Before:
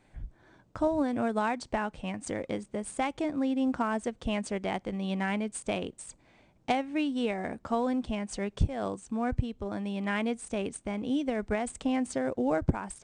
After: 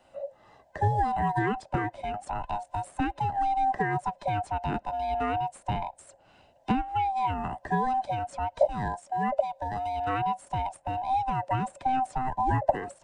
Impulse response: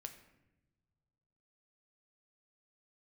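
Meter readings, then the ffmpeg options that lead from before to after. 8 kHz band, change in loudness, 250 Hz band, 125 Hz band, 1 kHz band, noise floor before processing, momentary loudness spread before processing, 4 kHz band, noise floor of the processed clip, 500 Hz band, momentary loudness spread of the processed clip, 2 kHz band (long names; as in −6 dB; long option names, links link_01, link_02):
can't be measured, +2.5 dB, −5.5 dB, +4.5 dB, +9.5 dB, −64 dBFS, 7 LU, −4.0 dB, −61 dBFS, 0.0 dB, 8 LU, +0.5 dB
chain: -filter_complex "[0:a]afftfilt=real='real(if(lt(b,1008),b+24*(1-2*mod(floor(b/24),2)),b),0)':imag='imag(if(lt(b,1008),b+24*(1-2*mod(floor(b/24),2)),b),0)':win_size=2048:overlap=0.75,acrossover=split=130|640|2100[link_01][link_02][link_03][link_04];[link_04]acompressor=threshold=-54dB:ratio=6[link_05];[link_01][link_02][link_03][link_05]amix=inputs=4:normalize=0,volume=2.5dB"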